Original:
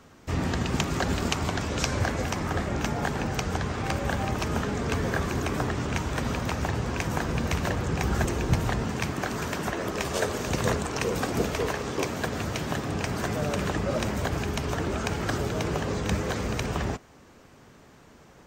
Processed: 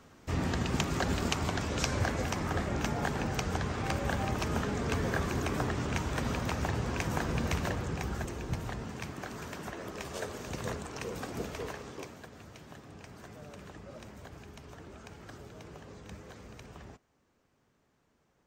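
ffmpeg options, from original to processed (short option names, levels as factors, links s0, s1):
-af "volume=0.631,afade=t=out:st=7.49:d=0.73:silence=0.446684,afade=t=out:st=11.69:d=0.57:silence=0.354813"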